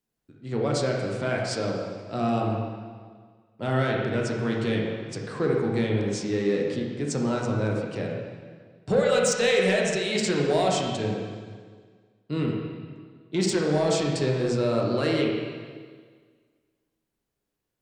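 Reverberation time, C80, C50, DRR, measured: 1.7 s, 2.5 dB, 1.0 dB, -2.0 dB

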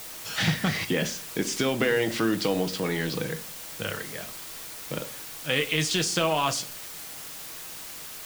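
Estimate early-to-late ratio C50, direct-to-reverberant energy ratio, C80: 17.0 dB, 7.0 dB, 23.0 dB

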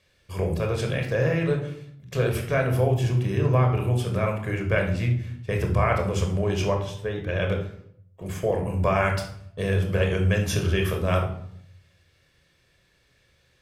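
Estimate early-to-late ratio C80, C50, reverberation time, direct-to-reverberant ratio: 11.0 dB, 6.5 dB, 0.65 s, 2.0 dB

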